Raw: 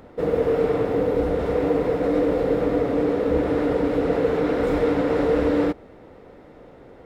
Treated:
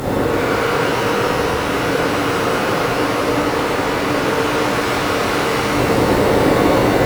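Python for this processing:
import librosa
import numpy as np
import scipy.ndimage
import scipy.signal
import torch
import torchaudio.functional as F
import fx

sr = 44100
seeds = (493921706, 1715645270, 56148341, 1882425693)

y = fx.quant_companded(x, sr, bits=8)
y = fx.fold_sine(y, sr, drive_db=12, ceiling_db=-9.5)
y = fx.low_shelf(y, sr, hz=150.0, db=5.5)
y = 10.0 ** (-11.5 / 20.0) * np.tanh(y / 10.0 ** (-11.5 / 20.0))
y = fx.over_compress(y, sr, threshold_db=-21.0, ratio=-0.5)
y = fx.highpass(y, sr, hz=94.0, slope=6)
y = fx.high_shelf(y, sr, hz=4600.0, db=10.0)
y = fx.rev_shimmer(y, sr, seeds[0], rt60_s=2.8, semitones=12, shimmer_db=-8, drr_db=-10.5)
y = F.gain(torch.from_numpy(y), -3.5).numpy()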